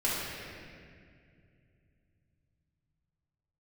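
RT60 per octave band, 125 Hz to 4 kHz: 5.1, 3.5, 2.6, 1.9, 2.2, 1.6 s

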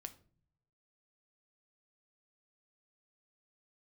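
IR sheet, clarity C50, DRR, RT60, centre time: 16.0 dB, 8.5 dB, not exponential, 5 ms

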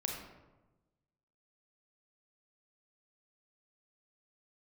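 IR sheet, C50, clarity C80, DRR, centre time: 2.5 dB, 5.0 dB, 0.0 dB, 48 ms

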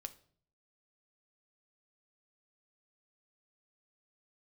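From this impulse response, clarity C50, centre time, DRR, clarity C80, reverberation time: 16.5 dB, 4 ms, 8.5 dB, 21.0 dB, 0.55 s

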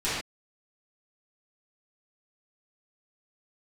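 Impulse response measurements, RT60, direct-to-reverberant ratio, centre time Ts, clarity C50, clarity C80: not exponential, -13.5 dB, 67 ms, -1.5 dB, 2.5 dB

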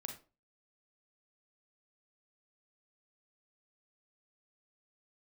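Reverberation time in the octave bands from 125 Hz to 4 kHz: 0.40, 0.40, 0.35, 0.30, 0.25, 0.25 s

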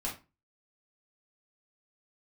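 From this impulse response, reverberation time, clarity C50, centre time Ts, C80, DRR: 0.30 s, 8.5 dB, 24 ms, 15.5 dB, -4.5 dB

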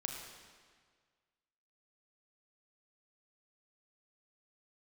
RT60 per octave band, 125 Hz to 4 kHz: 1.8, 1.7, 1.7, 1.7, 1.6, 1.5 s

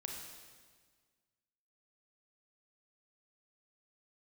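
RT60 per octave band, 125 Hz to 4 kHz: 1.8, 1.8, 1.6, 1.5, 1.5, 1.5 s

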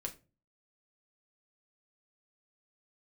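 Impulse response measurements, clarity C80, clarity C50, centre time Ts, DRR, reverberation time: 22.0 dB, 16.0 dB, 9 ms, 1.0 dB, not exponential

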